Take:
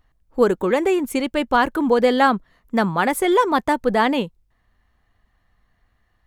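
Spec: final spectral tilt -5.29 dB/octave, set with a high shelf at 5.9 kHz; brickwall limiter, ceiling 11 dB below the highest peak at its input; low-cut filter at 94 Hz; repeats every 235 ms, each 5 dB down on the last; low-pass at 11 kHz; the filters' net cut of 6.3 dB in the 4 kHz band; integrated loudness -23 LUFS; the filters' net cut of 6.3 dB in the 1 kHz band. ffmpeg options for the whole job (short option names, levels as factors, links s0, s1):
-af "highpass=94,lowpass=11000,equalizer=f=1000:t=o:g=-7.5,equalizer=f=4000:t=o:g=-6,highshelf=f=5900:g=-6.5,alimiter=limit=0.141:level=0:latency=1,aecho=1:1:235|470|705|940|1175|1410|1645:0.562|0.315|0.176|0.0988|0.0553|0.031|0.0173,volume=1.19"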